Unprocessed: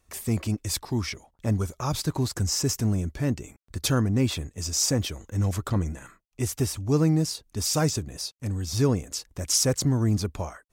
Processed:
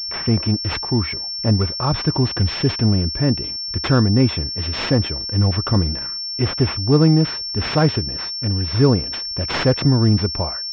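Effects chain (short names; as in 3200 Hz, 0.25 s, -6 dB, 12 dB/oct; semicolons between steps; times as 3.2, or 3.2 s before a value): pulse-width modulation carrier 5400 Hz; gain +8 dB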